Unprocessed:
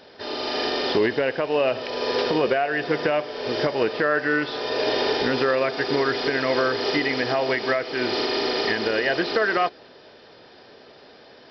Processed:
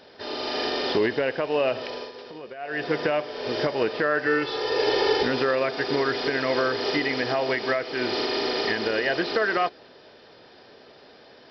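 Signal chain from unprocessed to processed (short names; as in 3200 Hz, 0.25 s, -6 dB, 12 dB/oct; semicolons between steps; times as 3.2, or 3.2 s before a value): 1.85–2.83 dip -16.5 dB, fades 0.26 s; 4.26–5.23 comb 2.3 ms, depth 71%; gain -2 dB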